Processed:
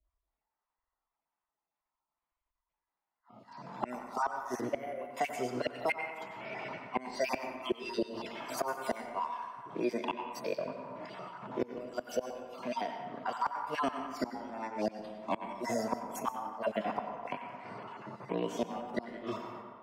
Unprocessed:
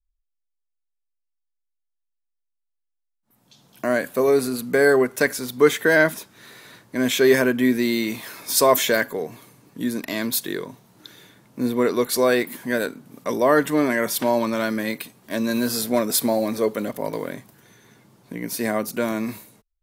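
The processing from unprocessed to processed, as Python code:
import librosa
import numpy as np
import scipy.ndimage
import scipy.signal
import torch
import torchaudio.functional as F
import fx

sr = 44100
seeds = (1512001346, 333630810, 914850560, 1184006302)

p1 = fx.spec_dropout(x, sr, seeds[0], share_pct=30)
p2 = fx.highpass(p1, sr, hz=200.0, slope=6)
p3 = fx.env_lowpass(p2, sr, base_hz=1400.0, full_db=-15.5)
p4 = fx.hpss(p3, sr, part='percussive', gain_db=-14)
p5 = fx.peak_eq(p4, sr, hz=660.0, db=14.5, octaves=0.41)
p6 = fx.rider(p5, sr, range_db=3, speed_s=2.0)
p7 = fx.formant_shift(p6, sr, semitones=5)
p8 = fx.gate_flip(p7, sr, shuts_db=-16.0, range_db=-28)
p9 = p8 + fx.echo_wet_bandpass(p8, sr, ms=90, feedback_pct=52, hz=1600.0, wet_db=-11.0, dry=0)
p10 = fx.rev_plate(p9, sr, seeds[1], rt60_s=0.96, hf_ratio=0.45, predelay_ms=85, drr_db=8.5)
p11 = fx.band_squash(p10, sr, depth_pct=70)
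y = F.gain(torch.from_numpy(p11), -2.0).numpy()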